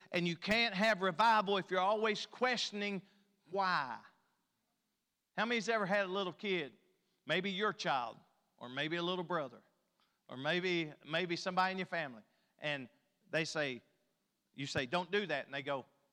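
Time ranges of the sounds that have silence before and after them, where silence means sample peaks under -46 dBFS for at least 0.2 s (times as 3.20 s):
3.53–3.99 s
5.37–6.68 s
7.28–8.13 s
8.61–9.57 s
10.30–12.18 s
12.61–12.85 s
13.33–13.78 s
14.58–15.81 s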